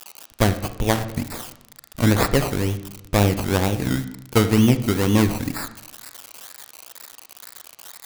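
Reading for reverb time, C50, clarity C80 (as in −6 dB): 0.85 s, 12.5 dB, 15.0 dB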